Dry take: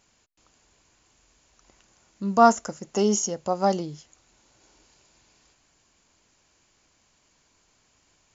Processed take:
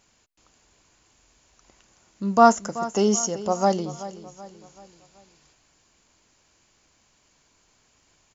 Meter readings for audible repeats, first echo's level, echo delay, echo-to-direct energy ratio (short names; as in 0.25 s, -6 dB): 3, -15.0 dB, 0.381 s, -14.0 dB